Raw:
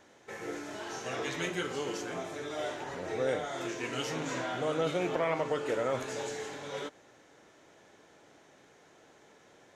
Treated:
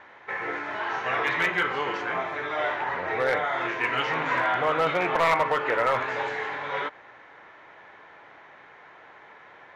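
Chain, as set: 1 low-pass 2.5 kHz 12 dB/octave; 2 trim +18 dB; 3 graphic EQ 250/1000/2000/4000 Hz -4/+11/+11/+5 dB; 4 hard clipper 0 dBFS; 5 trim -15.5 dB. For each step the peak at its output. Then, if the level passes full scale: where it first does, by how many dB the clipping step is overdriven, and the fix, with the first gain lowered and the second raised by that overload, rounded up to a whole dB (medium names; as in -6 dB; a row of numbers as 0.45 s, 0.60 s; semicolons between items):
-19.0 dBFS, -1.0 dBFS, +8.5 dBFS, 0.0 dBFS, -15.5 dBFS; step 3, 8.5 dB; step 2 +9 dB, step 5 -6.5 dB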